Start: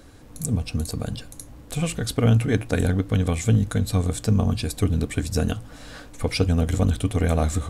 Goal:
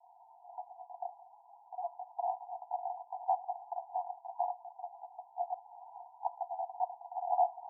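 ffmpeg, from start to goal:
-filter_complex "[0:a]asuperpass=centerf=820:order=20:qfactor=2.7,asettb=1/sr,asplit=3[a][b][c];[a]atrim=end=3.234[d];[b]atrim=start=3.23:end=3.91,asetpts=PTS-STARTPTS,afade=t=in:d=0.004:c=qsin,afade=t=out:st=0.676:d=0.004:c=qsin,acontrast=21[e];[c]atrim=start=3.906[f];[d][e]acrossfade=d=0.004:c1=hsin:c2=qsin[g];[g][f]acrossfade=d=0.004:c1=qsin:c2=hsin,volume=4.5dB"

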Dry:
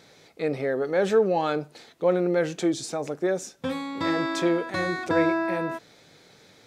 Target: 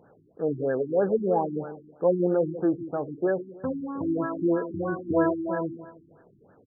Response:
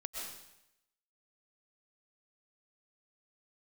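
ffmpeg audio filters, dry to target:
-filter_complex "[0:a]asplit=2[a][b];[b]adelay=156,lowpass=f=2k:p=1,volume=-12.5dB,asplit=2[c][d];[d]adelay=156,lowpass=f=2k:p=1,volume=0.36,asplit=2[e][f];[f]adelay=156,lowpass=f=2k:p=1,volume=0.36,asplit=2[g][h];[h]adelay=156,lowpass=f=2k:p=1,volume=0.36[i];[a][c][e][g][i]amix=inputs=5:normalize=0,afftfilt=real='re*lt(b*sr/1024,350*pow(1800/350,0.5+0.5*sin(2*PI*3.1*pts/sr)))':imag='im*lt(b*sr/1024,350*pow(1800/350,0.5+0.5*sin(2*PI*3.1*pts/sr)))':win_size=1024:overlap=0.75"

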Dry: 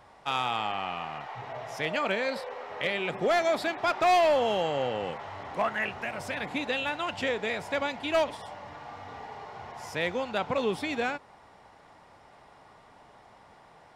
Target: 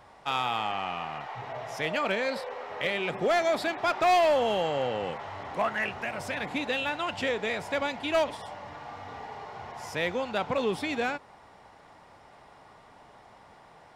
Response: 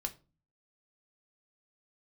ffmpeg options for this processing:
-af "aeval=exprs='0.119*(cos(1*acos(clip(val(0)/0.119,-1,1)))-cos(1*PI/2))+0.00376*(cos(5*acos(clip(val(0)/0.119,-1,1)))-cos(5*PI/2))':c=same"

